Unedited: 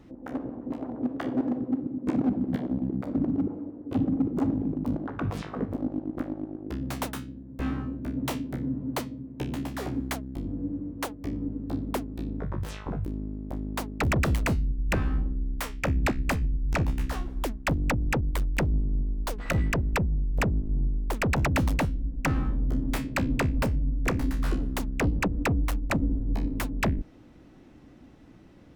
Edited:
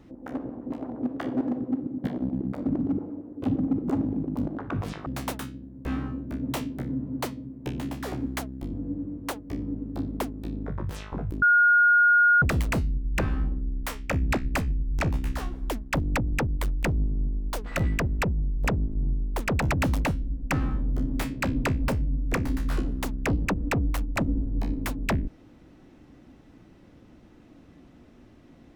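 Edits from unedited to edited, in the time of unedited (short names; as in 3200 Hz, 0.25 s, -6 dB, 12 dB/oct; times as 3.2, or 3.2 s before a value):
2.04–2.53 cut
5.55–6.8 cut
13.16–14.16 bleep 1430 Hz -15 dBFS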